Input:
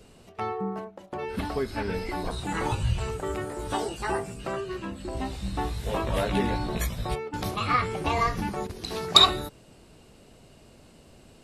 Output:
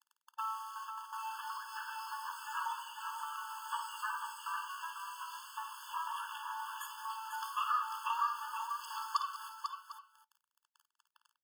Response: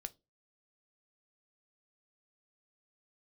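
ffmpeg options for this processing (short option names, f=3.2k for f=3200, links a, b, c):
-filter_complex "[0:a]acrusher=bits=6:mix=0:aa=0.000001,acompressor=threshold=-27dB:ratio=6,tiltshelf=f=750:g=9.5,aecho=1:1:53|195|495|751:0.316|0.168|0.473|0.15,asplit=2[a][b];[1:a]atrim=start_sample=2205[c];[b][c]afir=irnorm=-1:irlink=0,volume=0.5dB[d];[a][d]amix=inputs=2:normalize=0,afftfilt=real='re*eq(mod(floor(b*sr/1024/880),2),1)':imag='im*eq(mod(floor(b*sr/1024/880),2),1)':win_size=1024:overlap=0.75,volume=-1.5dB"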